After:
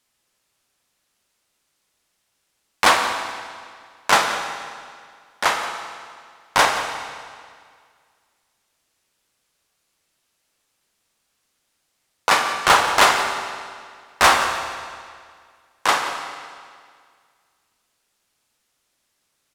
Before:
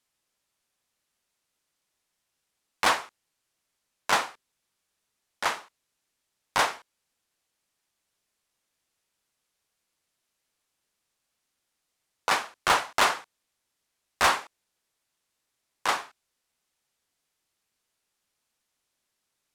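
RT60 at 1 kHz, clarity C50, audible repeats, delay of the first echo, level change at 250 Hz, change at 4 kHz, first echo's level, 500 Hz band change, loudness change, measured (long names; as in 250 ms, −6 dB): 2.0 s, 5.0 dB, 1, 177 ms, +8.5 dB, +9.0 dB, −15.0 dB, +9.0 dB, +7.0 dB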